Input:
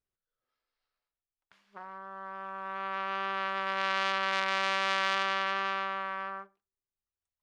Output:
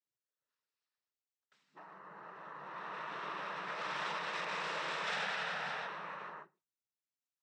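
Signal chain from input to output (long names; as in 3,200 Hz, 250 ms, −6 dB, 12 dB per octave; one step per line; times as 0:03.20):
0:05.06–0:05.86: comb filter 3.9 ms, depth 68%
cochlear-implant simulation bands 12
level −8 dB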